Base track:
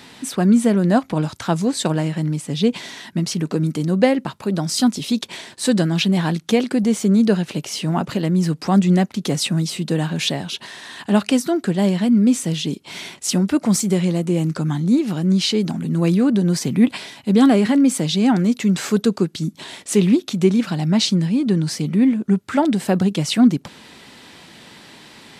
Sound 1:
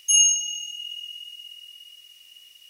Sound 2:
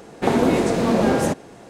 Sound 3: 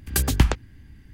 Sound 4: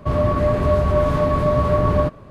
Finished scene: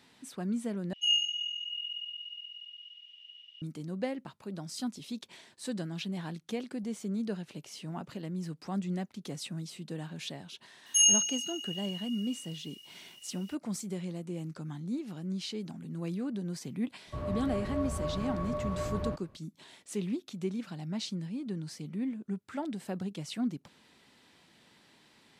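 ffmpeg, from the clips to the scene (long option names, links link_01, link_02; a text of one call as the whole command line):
ffmpeg -i bed.wav -i cue0.wav -i cue1.wav -i cue2.wav -i cue3.wav -filter_complex "[1:a]asplit=2[link_01][link_02];[0:a]volume=-19dB[link_03];[link_01]lowpass=frequency=3200:width_type=q:width=8.5[link_04];[link_03]asplit=2[link_05][link_06];[link_05]atrim=end=0.934[link_07];[link_04]atrim=end=2.69,asetpts=PTS-STARTPTS,volume=-15.5dB[link_08];[link_06]atrim=start=3.616[link_09];[link_02]atrim=end=2.69,asetpts=PTS-STARTPTS,volume=-5.5dB,afade=type=in:duration=0.004:curve=hsin,afade=type=out:start_time=2.686:duration=0.004:curve=hsin,adelay=10860[link_10];[4:a]atrim=end=2.3,asetpts=PTS-STARTPTS,volume=-17.5dB,afade=type=in:duration=0.004:curve=hsin,afade=type=out:start_time=2.296:duration=0.004:curve=hsin,adelay=17070[link_11];[link_07][link_08]acrossfade=duration=0.004:curve1=hsin:curve2=hsin[link_12];[link_12][link_09]acrossfade=duration=0.004:curve1=hsin:curve2=hsin[link_13];[link_13][link_10][link_11]amix=inputs=3:normalize=0" out.wav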